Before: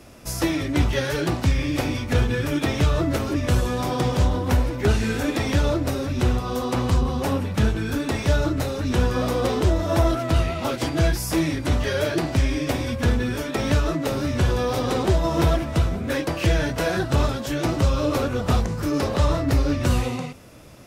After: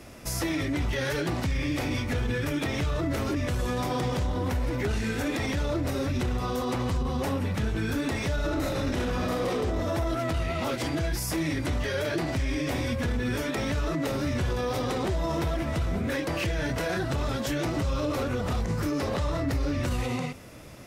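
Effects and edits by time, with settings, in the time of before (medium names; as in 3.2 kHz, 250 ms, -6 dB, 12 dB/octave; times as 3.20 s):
8.35–9.58 s: reverb throw, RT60 1 s, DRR -4 dB
whole clip: peaking EQ 2 kHz +4 dB 0.33 oct; peak limiter -20.5 dBFS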